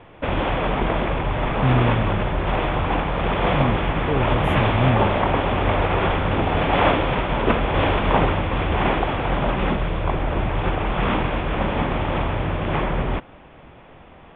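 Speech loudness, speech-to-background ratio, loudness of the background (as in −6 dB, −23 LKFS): −25.0 LKFS, −3.0 dB, −22.0 LKFS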